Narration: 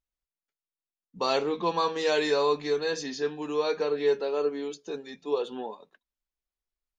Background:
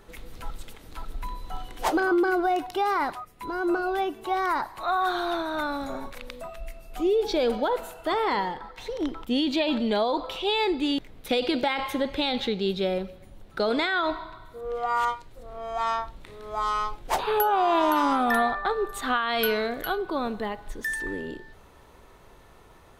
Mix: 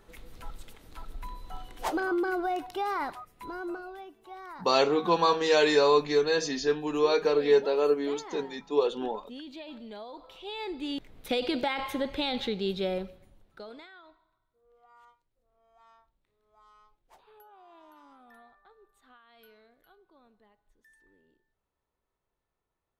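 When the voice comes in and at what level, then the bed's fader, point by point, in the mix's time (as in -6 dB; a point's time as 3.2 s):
3.45 s, +3.0 dB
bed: 3.47 s -6 dB
4.03 s -18.5 dB
10.16 s -18.5 dB
11.21 s -4 dB
13.02 s -4 dB
14.21 s -33 dB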